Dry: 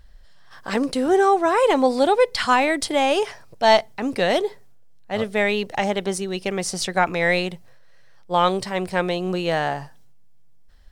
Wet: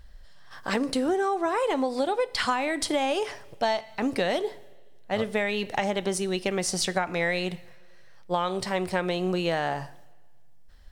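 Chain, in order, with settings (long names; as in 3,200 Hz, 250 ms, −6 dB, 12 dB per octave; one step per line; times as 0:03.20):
coupled-rooms reverb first 0.45 s, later 1.6 s, from −18 dB, DRR 15 dB
downward compressor 12 to 1, threshold −22 dBFS, peak gain reduction 13.5 dB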